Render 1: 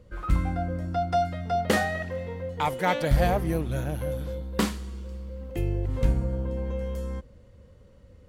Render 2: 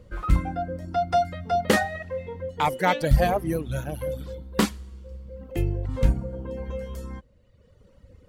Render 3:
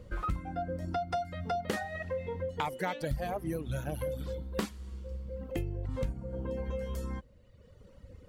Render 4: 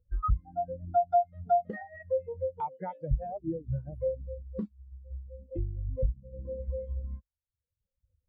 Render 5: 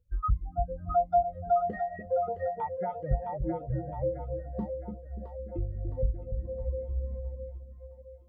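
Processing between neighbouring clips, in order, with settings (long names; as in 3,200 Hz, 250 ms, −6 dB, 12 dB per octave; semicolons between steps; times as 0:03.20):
reverb reduction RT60 1.4 s; level +3.5 dB
downward compressor 6 to 1, threshold −31 dBFS, peak gain reduction 18 dB
every bin expanded away from the loudest bin 2.5 to 1
echo with a time of its own for lows and highs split 480 Hz, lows 291 ms, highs 664 ms, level −6 dB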